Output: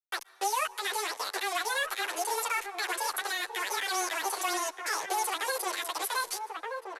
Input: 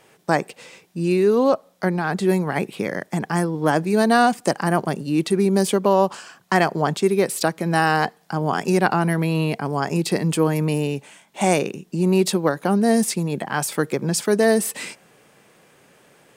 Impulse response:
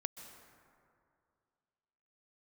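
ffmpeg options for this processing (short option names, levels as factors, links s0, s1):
-filter_complex "[0:a]highpass=f=94:w=0.5412,highpass=f=94:w=1.3066,aresample=11025,acrusher=bits=4:mix=0:aa=0.5,aresample=44100,aemphasis=mode=production:type=bsi,asoftclip=type=tanh:threshold=0.398,acrossover=split=210|730[s0][s1][s2];[s0]acompressor=threshold=0.00708:ratio=4[s3];[s1]acompressor=threshold=0.0398:ratio=4[s4];[s2]acompressor=threshold=0.0501:ratio=4[s5];[s3][s4][s5]amix=inputs=3:normalize=0,asetrate=103194,aresample=44100,lowshelf=f=440:g=-4.5,asplit=2[s6][s7];[s7]adelay=1224,volume=0.355,highshelf=f=4000:g=-27.6[s8];[s6][s8]amix=inputs=2:normalize=0,alimiter=limit=0.0631:level=0:latency=1:release=157,afreqshift=-13,asplit=2[s9][s10];[1:a]atrim=start_sample=2205[s11];[s10][s11]afir=irnorm=-1:irlink=0,volume=0.355[s12];[s9][s12]amix=inputs=2:normalize=0,asplit=2[s13][s14];[s14]adelay=9.3,afreqshift=1.8[s15];[s13][s15]amix=inputs=2:normalize=1,volume=1.5"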